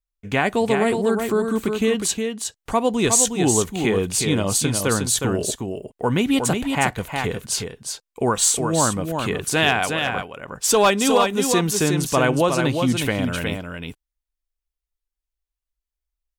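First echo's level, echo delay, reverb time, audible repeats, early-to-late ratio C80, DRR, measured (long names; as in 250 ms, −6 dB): −5.5 dB, 362 ms, no reverb audible, 1, no reverb audible, no reverb audible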